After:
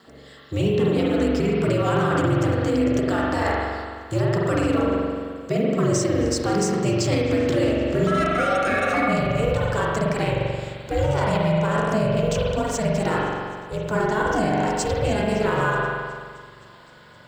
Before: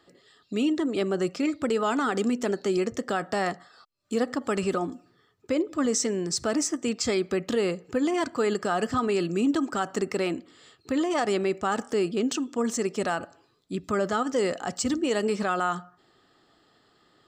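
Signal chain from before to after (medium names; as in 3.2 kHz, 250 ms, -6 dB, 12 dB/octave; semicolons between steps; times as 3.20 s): companding laws mixed up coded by mu; thinning echo 260 ms, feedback 77%, high-pass 420 Hz, level -23.5 dB; ring modulator 110 Hz, from 8.07 s 970 Hz, from 9.08 s 220 Hz; high-pass 93 Hz 12 dB/octave; bass shelf 130 Hz +9 dB; spring tank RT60 1.8 s, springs 43 ms, chirp 35 ms, DRR -3.5 dB; peak limiter -15 dBFS, peak gain reduction 6 dB; trim +3 dB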